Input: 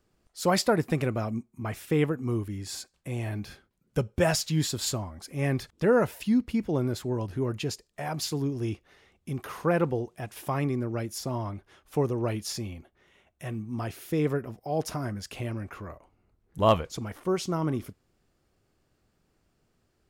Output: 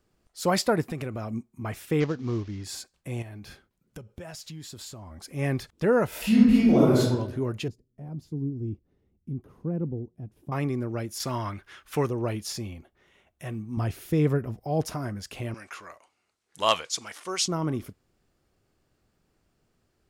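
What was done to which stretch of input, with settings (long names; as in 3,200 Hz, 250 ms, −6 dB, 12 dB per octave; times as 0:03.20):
0:00.83–0:01.33: downward compressor 3 to 1, threshold −30 dBFS
0:02.00–0:02.64: variable-slope delta modulation 32 kbit/s
0:03.22–0:05.11: downward compressor, threshold −39 dBFS
0:06.08–0:06.99: thrown reverb, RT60 0.97 s, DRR −9.5 dB
0:07.68–0:10.52: drawn EQ curve 260 Hz 0 dB, 650 Hz −17 dB, 1,700 Hz −28 dB
0:11.20–0:12.08: drawn EQ curve 760 Hz 0 dB, 1,500 Hz +12 dB, 7,800 Hz +7 dB
0:13.77–0:14.86: low-shelf EQ 160 Hz +11.5 dB
0:15.54–0:17.48: meter weighting curve ITU-R 468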